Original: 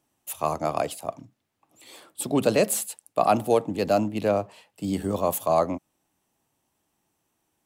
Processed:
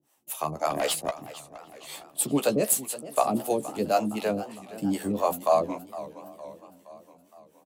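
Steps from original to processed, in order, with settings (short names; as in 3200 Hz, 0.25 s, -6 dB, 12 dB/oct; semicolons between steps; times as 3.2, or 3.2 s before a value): Bessel high-pass 150 Hz, order 2; high shelf 10000 Hz +6 dB; in parallel at 0 dB: compressor, threshold -32 dBFS, peak gain reduction 16 dB; on the sum: harmonic tremolo 3.9 Hz, depth 100%, crossover 430 Hz; 0.7–1.11 overdrive pedal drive 19 dB, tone 6800 Hz, clips at -18 dBFS; doubler 14 ms -7 dB; outdoor echo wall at 130 m, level -26 dB; warbling echo 0.464 s, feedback 56%, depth 183 cents, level -16 dB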